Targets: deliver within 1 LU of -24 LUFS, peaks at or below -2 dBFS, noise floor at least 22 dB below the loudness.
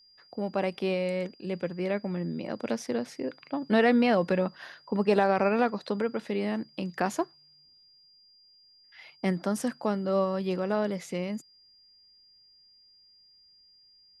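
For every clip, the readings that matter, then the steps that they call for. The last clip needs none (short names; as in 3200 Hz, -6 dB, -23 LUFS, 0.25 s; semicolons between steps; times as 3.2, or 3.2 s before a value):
steady tone 4800 Hz; tone level -57 dBFS; loudness -29.0 LUFS; peak -11.0 dBFS; loudness target -24.0 LUFS
-> notch 4800 Hz, Q 30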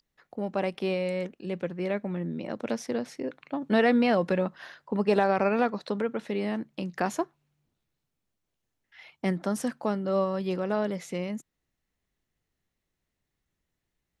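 steady tone none; loudness -29.0 LUFS; peak -11.0 dBFS; loudness target -24.0 LUFS
-> gain +5 dB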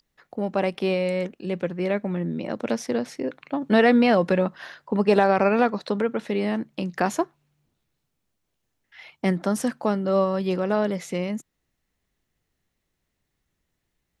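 loudness -24.0 LUFS; peak -6.0 dBFS; noise floor -78 dBFS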